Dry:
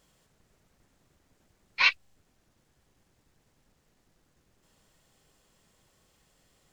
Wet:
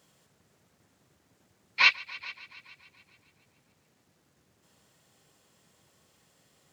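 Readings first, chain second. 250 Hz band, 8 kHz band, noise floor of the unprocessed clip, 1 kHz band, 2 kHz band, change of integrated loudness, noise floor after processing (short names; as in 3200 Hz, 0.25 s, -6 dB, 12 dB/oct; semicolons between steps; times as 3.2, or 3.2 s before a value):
n/a, +2.0 dB, -72 dBFS, +2.0 dB, +2.0 dB, -0.5 dB, -70 dBFS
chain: HPF 84 Hz 24 dB/oct; multi-head echo 0.142 s, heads all three, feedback 43%, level -23 dB; gain +2 dB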